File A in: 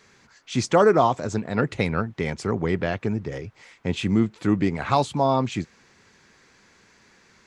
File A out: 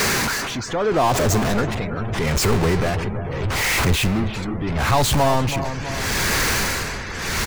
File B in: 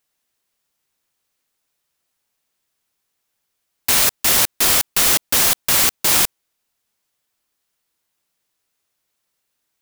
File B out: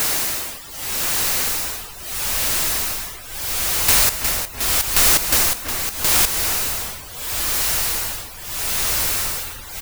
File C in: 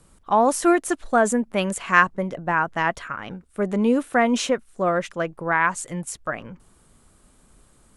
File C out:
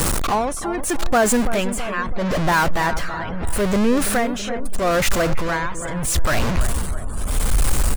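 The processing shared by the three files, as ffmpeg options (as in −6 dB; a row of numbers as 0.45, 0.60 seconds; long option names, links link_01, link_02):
-filter_complex "[0:a]aeval=exprs='val(0)+0.5*0.168*sgn(val(0))':channel_layout=same,tremolo=f=0.78:d=0.83,asplit=2[link_01][link_02];[link_02]adelay=329,lowpass=frequency=2200:poles=1,volume=-12dB,asplit=2[link_03][link_04];[link_04]adelay=329,lowpass=frequency=2200:poles=1,volume=0.49,asplit=2[link_05][link_06];[link_06]adelay=329,lowpass=frequency=2200:poles=1,volume=0.49,asplit=2[link_07][link_08];[link_08]adelay=329,lowpass=frequency=2200:poles=1,volume=0.49,asplit=2[link_09][link_10];[link_10]adelay=329,lowpass=frequency=2200:poles=1,volume=0.49[link_11];[link_01][link_03][link_05][link_07][link_09][link_11]amix=inputs=6:normalize=0,asubboost=boost=4:cutoff=95,afftdn=noise_reduction=30:noise_floor=-41,adynamicequalizer=threshold=0.00891:dfrequency=3300:dqfactor=5.2:tfrequency=3300:tqfactor=5.2:attack=5:release=100:ratio=0.375:range=2.5:mode=cutabove:tftype=bell,acompressor=threshold=-30dB:ratio=1.5,volume=5.5dB"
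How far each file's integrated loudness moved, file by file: +3.0, −4.0, +1.0 LU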